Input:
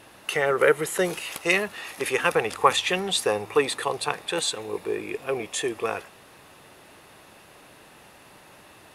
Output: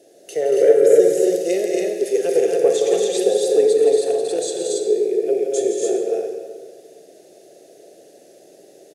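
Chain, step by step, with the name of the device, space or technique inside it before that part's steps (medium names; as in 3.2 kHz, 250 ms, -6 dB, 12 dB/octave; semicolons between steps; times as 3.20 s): stadium PA (high-pass 160 Hz 24 dB/octave; peaking EQ 2.8 kHz +4.5 dB 1.5 oct; loudspeakers at several distances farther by 58 m -8 dB, 80 m -5 dB, 96 m -2 dB; reverberation RT60 1.7 s, pre-delay 33 ms, DRR 4 dB); FFT filter 100 Hz 0 dB, 230 Hz -3 dB, 390 Hz +13 dB, 690 Hz +7 dB, 1 kHz -29 dB, 1.7 kHz -12 dB, 2.6 kHz -16 dB, 6.4 kHz +7 dB, 11 kHz -1 dB; trim -5.5 dB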